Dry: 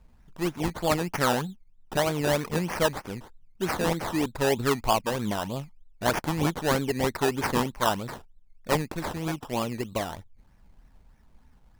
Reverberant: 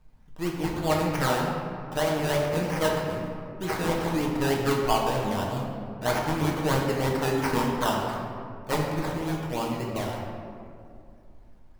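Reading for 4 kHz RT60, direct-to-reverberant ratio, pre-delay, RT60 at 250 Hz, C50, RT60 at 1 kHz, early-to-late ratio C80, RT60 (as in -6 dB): 1.1 s, -2.0 dB, 6 ms, 3.0 s, 1.5 dB, 2.1 s, 3.0 dB, 2.4 s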